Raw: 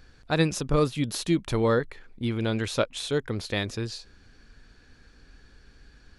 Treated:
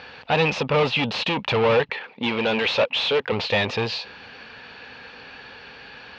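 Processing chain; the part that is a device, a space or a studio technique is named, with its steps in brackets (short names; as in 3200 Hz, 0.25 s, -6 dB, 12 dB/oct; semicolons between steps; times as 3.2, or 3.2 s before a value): 1.89–3.32 HPF 170 Hz 12 dB/oct; overdrive pedal into a guitar cabinet (overdrive pedal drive 33 dB, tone 3700 Hz, clips at -7 dBFS; speaker cabinet 79–4300 Hz, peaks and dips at 330 Hz -10 dB, 500 Hz +5 dB, 870 Hz +8 dB, 1500 Hz -4 dB, 2700 Hz +8 dB); gain -6 dB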